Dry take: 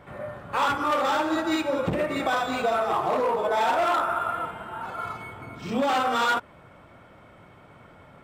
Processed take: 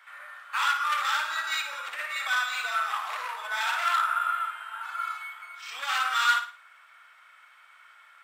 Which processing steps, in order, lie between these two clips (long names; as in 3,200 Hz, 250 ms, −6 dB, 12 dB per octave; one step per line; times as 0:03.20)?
Chebyshev high-pass filter 1,400 Hz, order 3
flutter between parallel walls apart 9.6 metres, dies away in 0.38 s
level +3 dB